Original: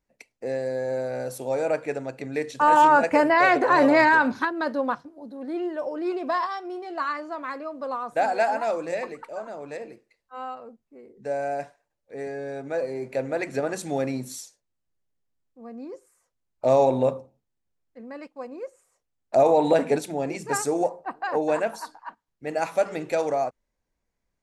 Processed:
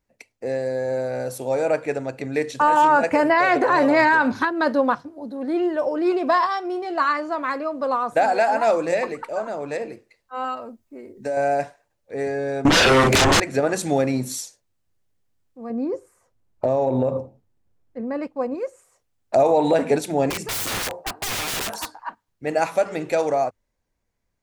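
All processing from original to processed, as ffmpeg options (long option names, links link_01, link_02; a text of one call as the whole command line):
ffmpeg -i in.wav -filter_complex "[0:a]asettb=1/sr,asplit=3[link_01][link_02][link_03];[link_01]atrim=end=10.444[link_04];[link_02]atrim=start=10.44:end=11.37,asetpts=PTS-STARTPTS,afade=type=in:duration=0.004:curve=qsin,afade=type=out:start_time=0.926:duration=0.004:curve=qsin,highshelf=frequency=6000:gain=7,aecho=1:1:3.2:0.43,atrim=end_sample=41013,acompressor=threshold=-29dB:ratio=10:attack=3.2:release=140:knee=1:detection=peak[link_05];[link_03]atrim=start=11.366[link_06];[link_04][link_05]acrossfade=duration=0.004:curve1=hsin:curve2=qsin[link_07];[link_07][link_06]acrossfade=duration=0.004:curve1=qsin:curve2=hsin,asettb=1/sr,asplit=3[link_08][link_09][link_10];[link_08]atrim=end=12.654[link_11];[link_09]atrim=start=12.65:end=13.4,asetpts=PTS-STARTPTS,afade=type=in:duration=0.004:curve=qsin,afade=type=out:start_time=0.746:duration=0.004:curve=qsin,equalizer=frequency=840:width_type=o:width=0.22:gain=-6.5,aeval=exprs='0.15*sin(PI/2*8.91*val(0)/0.15)':channel_layout=same,asplit=2[link_12][link_13];[link_13]adelay=38,volume=-2.5dB[link_14];[link_12][link_14]amix=inputs=2:normalize=0,atrim=end_sample=33075[link_15];[link_10]atrim=start=13.396[link_16];[link_11][link_15]acrossfade=duration=0.004:curve1=hsin:curve2=qsin[link_17];[link_17][link_16]acrossfade=duration=0.004:curve1=qsin:curve2=hsin,asettb=1/sr,asplit=3[link_18][link_19][link_20];[link_18]atrim=end=15.704[link_21];[link_19]atrim=start=15.7:end=18.55,asetpts=PTS-STARTPTS,afade=type=in:duration=0.004:curve=qsin,afade=type=out:start_time=2.846:duration=0.004:curve=qsin,tiltshelf=frequency=1400:gain=5.5,acompressor=threshold=-24dB:ratio=12:attack=3.2:release=140:knee=1:detection=peak[link_22];[link_20]atrim=start=18.546[link_23];[link_21][link_22]acrossfade=duration=0.004:curve1=hsin:curve2=qsin[link_24];[link_24][link_23]acrossfade=duration=0.004:curve1=qsin:curve2=hsin,asettb=1/sr,asplit=3[link_25][link_26][link_27];[link_25]atrim=end=20.304[link_28];[link_26]atrim=start=20.3:end=21.99,asetpts=PTS-STARTPTS,afade=type=in:duration=0.004:curve=qsin,afade=type=out:start_time=1.686:duration=0.004:curve=qsin,lowshelf=frequency=130:gain=-11.5,aeval=exprs='(mod(28.2*val(0)+1,2)-1)/28.2':channel_layout=same[link_29];[link_27]atrim=start=21.986[link_30];[link_28][link_29]acrossfade=duration=0.004:curve1=hsin:curve2=qsin[link_31];[link_31][link_30]acrossfade=duration=0.004:curve1=qsin:curve2=hsin,equalizer=frequency=100:width_type=o:width=0.27:gain=8.5,dynaudnorm=framelen=770:gausssize=7:maxgain=5dB,alimiter=limit=-12dB:level=0:latency=1:release=258,volume=3dB" out.wav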